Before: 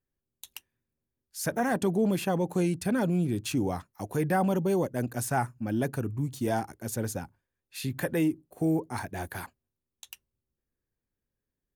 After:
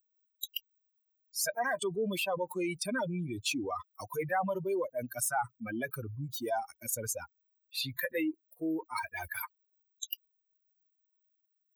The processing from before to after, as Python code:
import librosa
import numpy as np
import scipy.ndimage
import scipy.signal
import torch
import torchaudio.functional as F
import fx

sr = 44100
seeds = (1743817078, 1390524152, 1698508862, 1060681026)

y = fx.bin_expand(x, sr, power=3.0)
y = scipy.signal.sosfilt(scipy.signal.butter(2, 540.0, 'highpass', fs=sr, output='sos'), y)
y = fx.env_flatten(y, sr, amount_pct=70)